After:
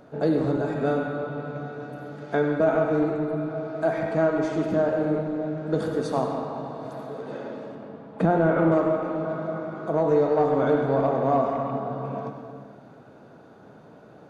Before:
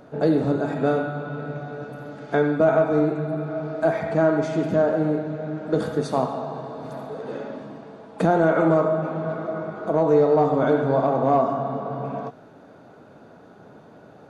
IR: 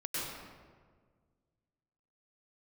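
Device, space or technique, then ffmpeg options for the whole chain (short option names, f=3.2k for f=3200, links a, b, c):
saturated reverb return: -filter_complex "[0:a]asettb=1/sr,asplit=3[a][b][c];[a]atrim=end=7.754[d];[b]atrim=start=7.75:end=8.72,asetpts=PTS-STARTPTS,afade=t=in:d=0.004:c=qsin,afade=t=out:st=0.966:d=0.004:c=qsin,bass=f=250:g=4,treble=f=4k:g=-12[e];[c]atrim=start=8.716[f];[d][e]acrossfade=d=0.004:c1=hsin:c2=qsin[g];[g][f]acrossfade=d=0.004:c1=qsin:c2=hsin,asplit=2[h][i];[1:a]atrim=start_sample=2205[j];[i][j]afir=irnorm=-1:irlink=0,asoftclip=type=tanh:threshold=-10.5dB,volume=-7dB[k];[h][k]amix=inputs=2:normalize=0,volume=-5dB"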